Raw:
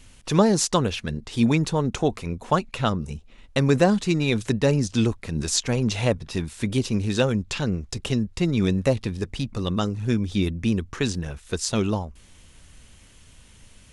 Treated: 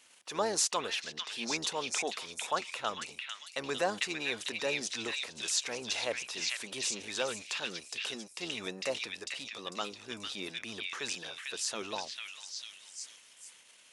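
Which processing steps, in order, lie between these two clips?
sub-octave generator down 1 octave, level −6 dB
echo through a band-pass that steps 449 ms, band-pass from 2,600 Hz, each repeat 0.7 octaves, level 0 dB
transient designer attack −4 dB, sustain +4 dB
high-pass filter 610 Hz 12 dB per octave
convolution reverb, pre-delay 35 ms, DRR 40.5 dB
level −6 dB

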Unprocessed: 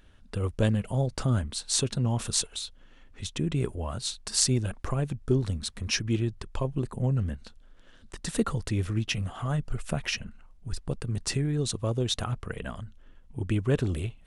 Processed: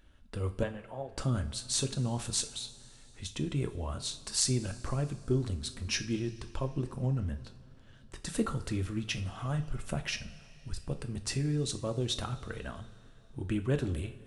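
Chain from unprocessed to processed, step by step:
0:00.63–0:01.12: three-way crossover with the lows and the highs turned down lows −17 dB, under 430 Hz, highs −21 dB, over 2,600 Hz
coupled-rooms reverb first 0.36 s, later 3.2 s, from −18 dB, DRR 7 dB
level −5 dB

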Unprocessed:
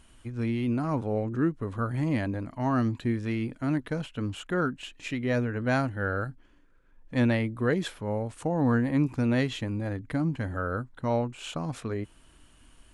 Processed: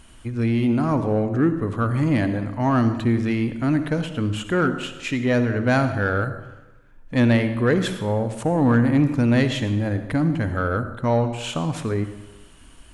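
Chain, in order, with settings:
convolution reverb RT60 1.0 s, pre-delay 53 ms, DRR 10 dB
in parallel at −4.5 dB: soft clipping −25.5 dBFS, distortion −11 dB
on the sum: level +4 dB

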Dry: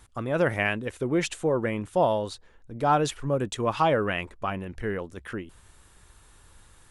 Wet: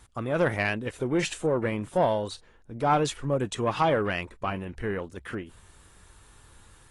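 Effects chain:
one-sided soft clipper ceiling −11.5 dBFS
AAC 32 kbit/s 24,000 Hz

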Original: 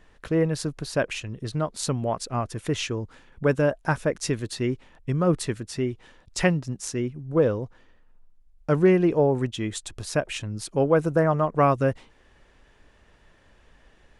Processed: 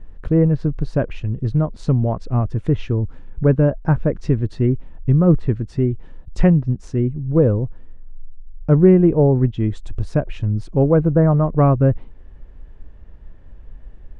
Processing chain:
treble cut that deepens with the level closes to 2,700 Hz, closed at −21 dBFS
spectral tilt −4.5 dB per octave
level −1 dB

